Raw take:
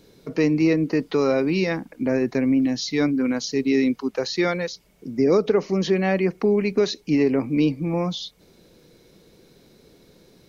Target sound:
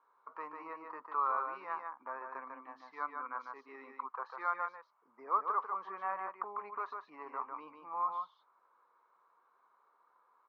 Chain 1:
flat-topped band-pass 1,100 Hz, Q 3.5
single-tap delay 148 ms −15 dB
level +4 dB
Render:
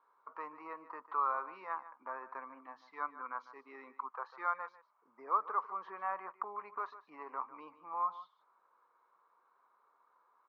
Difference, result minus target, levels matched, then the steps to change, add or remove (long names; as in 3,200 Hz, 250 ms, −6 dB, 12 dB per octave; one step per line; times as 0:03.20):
echo-to-direct −10 dB
change: single-tap delay 148 ms −5 dB